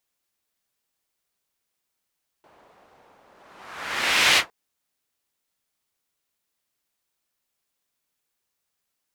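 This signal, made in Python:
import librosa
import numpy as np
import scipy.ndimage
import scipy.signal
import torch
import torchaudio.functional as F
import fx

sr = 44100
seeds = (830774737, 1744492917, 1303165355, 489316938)

y = fx.whoosh(sr, seeds[0], length_s=2.06, peak_s=1.93, rise_s=1.17, fall_s=0.13, ends_hz=760.0, peak_hz=2700.0, q=1.2, swell_db=39.0)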